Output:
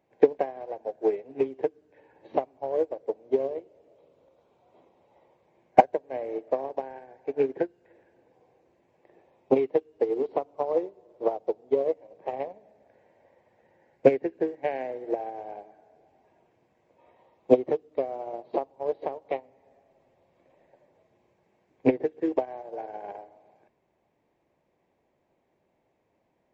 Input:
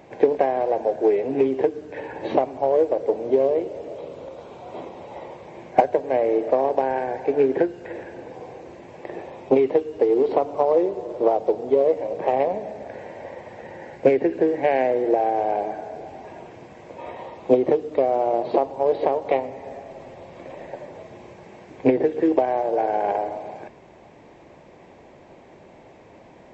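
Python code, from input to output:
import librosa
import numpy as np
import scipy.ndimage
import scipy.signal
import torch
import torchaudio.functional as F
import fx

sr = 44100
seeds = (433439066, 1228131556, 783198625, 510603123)

y = fx.upward_expand(x, sr, threshold_db=-28.0, expansion=2.5)
y = y * 10.0 ** (1.0 / 20.0)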